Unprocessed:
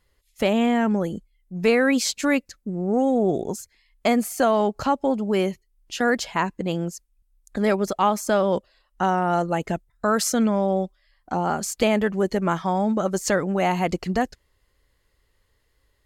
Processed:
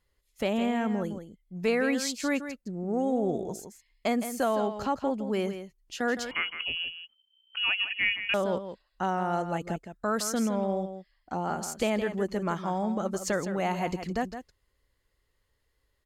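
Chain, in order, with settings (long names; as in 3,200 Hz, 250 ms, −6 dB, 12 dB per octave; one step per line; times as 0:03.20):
single-tap delay 163 ms −10 dB
0:06.31–0:08.34: voice inversion scrambler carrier 3,100 Hz
level −7.5 dB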